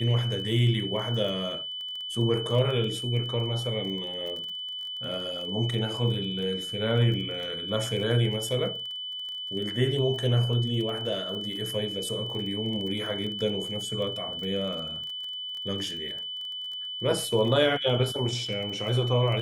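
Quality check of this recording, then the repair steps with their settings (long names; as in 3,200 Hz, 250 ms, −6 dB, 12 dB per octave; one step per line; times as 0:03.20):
surface crackle 21 per second −34 dBFS
whistle 3,000 Hz −33 dBFS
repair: click removal
notch filter 3,000 Hz, Q 30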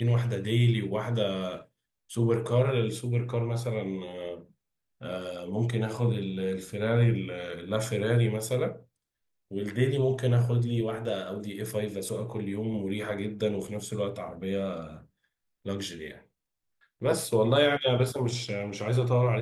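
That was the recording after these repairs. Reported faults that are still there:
none of them is left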